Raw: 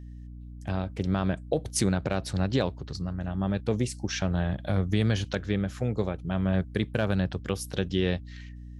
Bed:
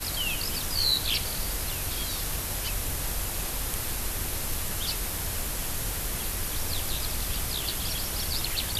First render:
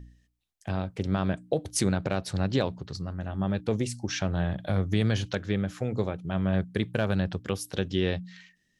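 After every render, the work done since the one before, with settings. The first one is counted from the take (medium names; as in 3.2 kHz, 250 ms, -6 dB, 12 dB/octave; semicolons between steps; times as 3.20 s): de-hum 60 Hz, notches 5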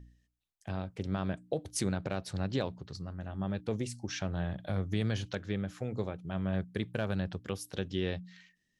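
trim -6.5 dB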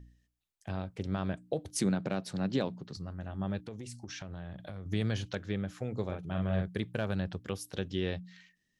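1.71–2.97 s: resonant high-pass 180 Hz, resonance Q 1.7; 3.59–4.86 s: compression 5:1, threshold -39 dBFS; 6.05–6.80 s: doubling 44 ms -3 dB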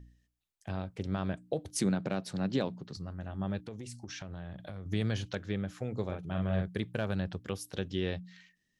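no audible change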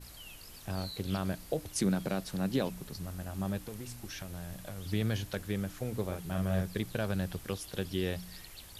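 add bed -20 dB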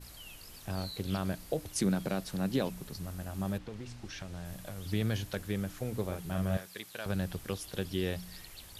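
3.57–4.44 s: low-pass 3.7 kHz -> 7.9 kHz; 6.57–7.06 s: high-pass 1.3 kHz 6 dB/octave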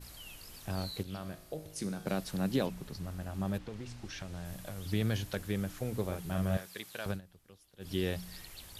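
1.03–2.07 s: feedback comb 52 Hz, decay 0.9 s, mix 70%; 2.66–3.54 s: treble shelf 6.4 kHz -8 dB; 7.09–7.91 s: dip -21.5 dB, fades 0.12 s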